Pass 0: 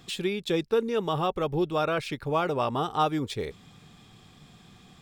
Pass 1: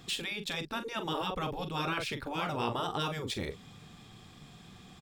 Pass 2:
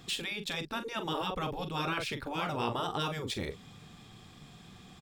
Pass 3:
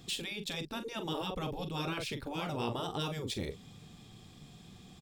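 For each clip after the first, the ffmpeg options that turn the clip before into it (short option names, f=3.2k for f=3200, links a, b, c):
-filter_complex "[0:a]asplit=2[a][b];[b]adelay=42,volume=-11dB[c];[a][c]amix=inputs=2:normalize=0,afftfilt=real='re*lt(hypot(re,im),0.178)':imag='im*lt(hypot(re,im),0.178)':win_size=1024:overlap=0.75"
-af anull
-af "equalizer=f=1.4k:w=0.78:g=-7.5"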